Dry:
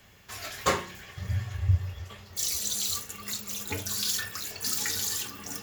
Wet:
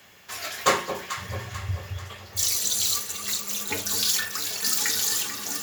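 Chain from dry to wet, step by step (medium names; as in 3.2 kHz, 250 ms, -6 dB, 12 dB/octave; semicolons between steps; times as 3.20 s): high-pass 340 Hz 6 dB/octave; on a send: echo whose repeats swap between lows and highs 220 ms, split 940 Hz, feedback 67%, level -7 dB; on the sum: trim +5.5 dB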